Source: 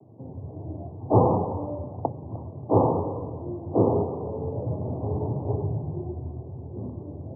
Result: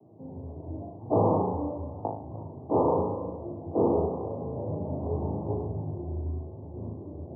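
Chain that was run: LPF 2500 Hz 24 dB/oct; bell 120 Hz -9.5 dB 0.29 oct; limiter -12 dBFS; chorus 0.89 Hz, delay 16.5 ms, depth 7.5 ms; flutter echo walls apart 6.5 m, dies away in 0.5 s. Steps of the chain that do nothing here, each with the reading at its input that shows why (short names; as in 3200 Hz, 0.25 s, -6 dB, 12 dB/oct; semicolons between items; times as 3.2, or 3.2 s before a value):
LPF 2500 Hz: input band ends at 1200 Hz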